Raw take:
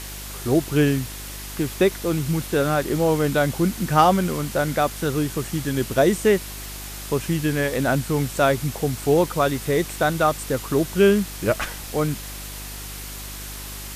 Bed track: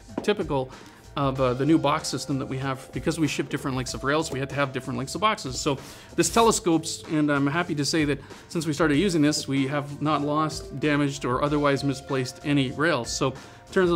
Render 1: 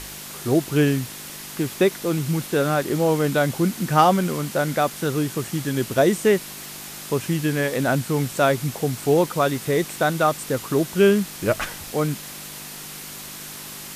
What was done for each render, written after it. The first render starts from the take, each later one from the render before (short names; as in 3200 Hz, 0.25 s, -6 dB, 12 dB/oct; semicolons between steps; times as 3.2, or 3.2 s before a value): de-hum 50 Hz, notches 2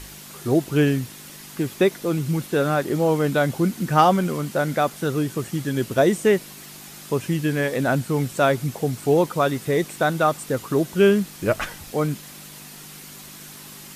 denoiser 6 dB, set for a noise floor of -37 dBFS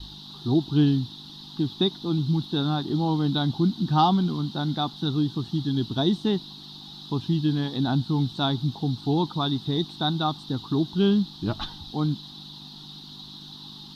EQ curve 310 Hz 0 dB, 550 Hz -22 dB, 830 Hz 0 dB, 2300 Hz -23 dB, 3800 Hz +12 dB, 7400 Hz -25 dB; gate with hold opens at -35 dBFS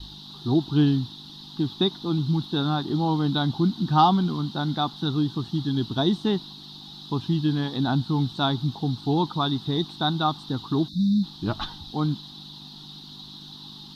10.89–11.23 spectral delete 310–3500 Hz; dynamic EQ 1200 Hz, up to +4 dB, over -43 dBFS, Q 0.99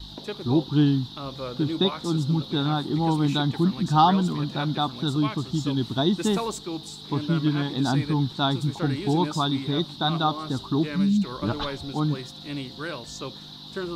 add bed track -11 dB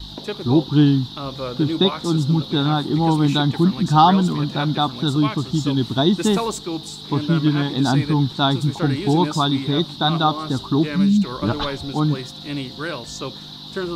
gain +5.5 dB; limiter -2 dBFS, peak gain reduction 1 dB